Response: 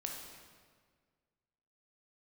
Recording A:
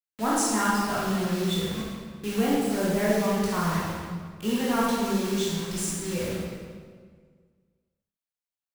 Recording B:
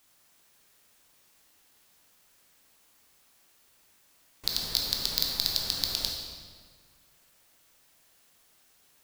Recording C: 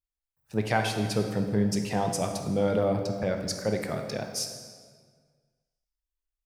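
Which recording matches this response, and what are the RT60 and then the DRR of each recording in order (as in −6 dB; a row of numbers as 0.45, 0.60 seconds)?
B; 1.7, 1.7, 1.7 seconds; −7.0, 0.0, 4.0 decibels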